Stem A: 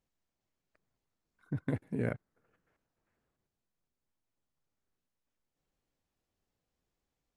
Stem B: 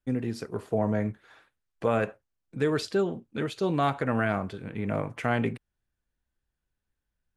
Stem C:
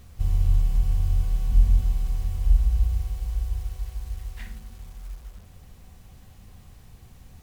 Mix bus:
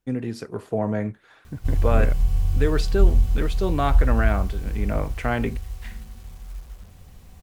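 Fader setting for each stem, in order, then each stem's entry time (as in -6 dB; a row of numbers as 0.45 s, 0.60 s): +1.5 dB, +2.0 dB, +1.5 dB; 0.00 s, 0.00 s, 1.45 s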